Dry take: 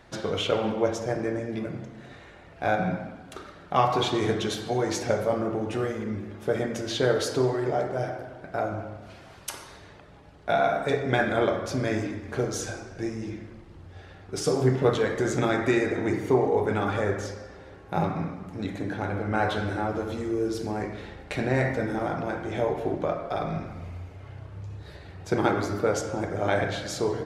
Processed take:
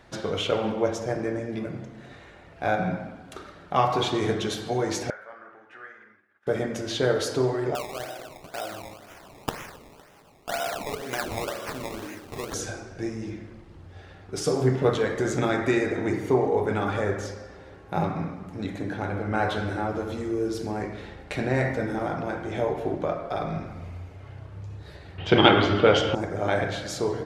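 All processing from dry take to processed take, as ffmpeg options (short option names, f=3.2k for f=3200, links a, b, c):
-filter_complex "[0:a]asettb=1/sr,asplit=3[a][b][c];[a]atrim=end=5.104[d];[b]atrim=start=5.1:end=6.47,asetpts=PTS-STARTPTS,afade=t=in:d=0.004:c=qsin,afade=t=out:st=1.366:d=0.004:c=qsin,bandpass=f=1.6k:t=q:w=4.6,agate=range=-33dB:threshold=-52dB:ratio=3:release=100:detection=peak[e];[c]atrim=start=6.466[f];[d][e]acrossfade=d=0.004:c1=hsin:c2=qsin[g];[g][f]acrossfade=d=0.004:c1=qsin:c2=hsin,asettb=1/sr,asplit=3[h][i][j];[h]atrim=end=7.754[k];[i]atrim=start=7.75:end=12.54,asetpts=PTS-STARTPTS,afade=t=in:d=0.004:c=qsin,afade=t=out:st=4.786:d=0.004:c=qsin,aemphasis=mode=production:type=riaa,acompressor=threshold=-35dB:ratio=1.5:attack=3.2:release=140:knee=1:detection=peak,acrusher=samples=20:mix=1:aa=0.000001:lfo=1:lforange=20:lforate=2[l];[j]atrim=start=12.536[m];[k][l]acrossfade=d=0.004:c1=hsin:c2=qsin[n];[n][m]acrossfade=d=0.004:c1=qsin:c2=hsin,asettb=1/sr,asplit=3[o][p][q];[o]atrim=end=25.184[r];[p]atrim=start=25.18:end=26.15,asetpts=PTS-STARTPTS,afade=t=in:d=0.004:c=qsin,afade=t=out:st=0.966:d=0.004:c=qsin,acontrast=66,lowpass=f=3.1k:t=q:w=14[s];[q]atrim=start=26.146[t];[r][s]acrossfade=d=0.004:c1=hsin:c2=qsin[u];[u][t]acrossfade=d=0.004:c1=qsin:c2=hsin"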